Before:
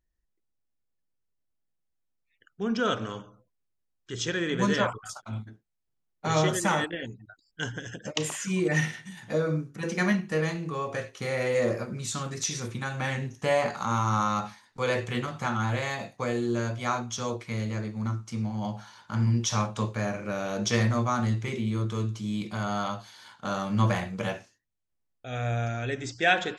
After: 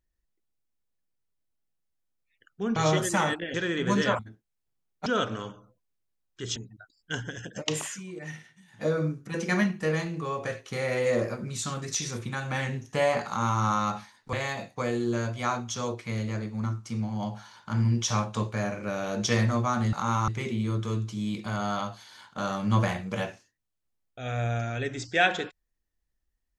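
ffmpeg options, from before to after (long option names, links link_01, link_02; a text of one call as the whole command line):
ffmpeg -i in.wav -filter_complex "[0:a]asplit=11[link_01][link_02][link_03][link_04][link_05][link_06][link_07][link_08][link_09][link_10][link_11];[link_01]atrim=end=2.762[link_12];[link_02]atrim=start=6.268:end=7.052[link_13];[link_03]atrim=start=4.258:end=4.912[link_14];[link_04]atrim=start=5.398:end=6.272[link_15];[link_05]atrim=start=2.758:end=4.262[link_16];[link_06]atrim=start=7.048:end=8.52,asetpts=PTS-STARTPTS,afade=type=out:start_time=1.312:duration=0.16:silence=0.199526[link_17];[link_07]atrim=start=8.52:end=9.19,asetpts=PTS-STARTPTS,volume=-14dB[link_18];[link_08]atrim=start=9.19:end=14.822,asetpts=PTS-STARTPTS,afade=type=in:duration=0.16:silence=0.199526[link_19];[link_09]atrim=start=15.748:end=21.352[link_20];[link_10]atrim=start=13.758:end=14.112[link_21];[link_11]atrim=start=21.348[link_22];[link_12][link_13]acrossfade=duration=0.004:curve1=hsin:curve2=hsin[link_23];[link_23][link_14]acrossfade=duration=0.004:curve1=hsin:curve2=hsin[link_24];[link_24][link_15]acrossfade=duration=0.004:curve1=hsin:curve2=hsin[link_25];[link_25][link_16]acrossfade=duration=0.004:curve1=hsin:curve2=hsin[link_26];[link_17][link_18][link_19]concat=n=3:v=0:a=1[link_27];[link_26][link_27]acrossfade=duration=0.004:curve1=hsin:curve2=hsin[link_28];[link_28][link_20]acrossfade=duration=0.004:curve1=hsin:curve2=hsin[link_29];[link_29][link_21]acrossfade=duration=0.004:curve1=hsin:curve2=hsin[link_30];[link_30][link_22]acrossfade=duration=0.004:curve1=hsin:curve2=hsin" out.wav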